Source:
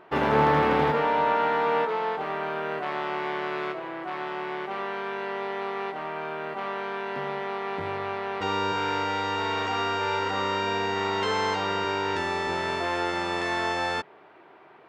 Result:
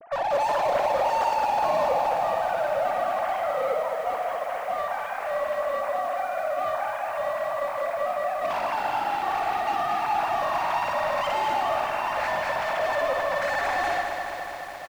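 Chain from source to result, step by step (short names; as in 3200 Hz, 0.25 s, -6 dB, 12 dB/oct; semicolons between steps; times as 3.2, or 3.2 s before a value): sine-wave speech; high shelf 2200 Hz -3.5 dB; in parallel at -3 dB: wavefolder -29.5 dBFS; on the sum: feedback echo 60 ms, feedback 32%, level -6.5 dB; overloaded stage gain 20 dB; bell 410 Hz +9.5 dB 2.1 oct; lo-fi delay 0.211 s, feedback 80%, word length 7-bit, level -6.5 dB; gain -6.5 dB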